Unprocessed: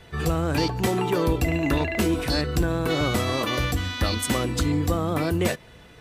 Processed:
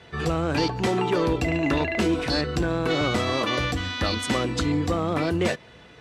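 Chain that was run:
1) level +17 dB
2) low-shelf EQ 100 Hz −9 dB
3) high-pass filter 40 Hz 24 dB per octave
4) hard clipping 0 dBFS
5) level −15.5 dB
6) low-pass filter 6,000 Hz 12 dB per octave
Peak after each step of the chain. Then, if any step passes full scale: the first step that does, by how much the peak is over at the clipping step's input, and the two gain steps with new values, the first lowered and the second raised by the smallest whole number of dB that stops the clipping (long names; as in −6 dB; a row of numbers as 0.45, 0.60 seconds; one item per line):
+4.5, +5.5, +7.5, 0.0, −15.5, −15.0 dBFS
step 1, 7.5 dB
step 1 +9 dB, step 5 −7.5 dB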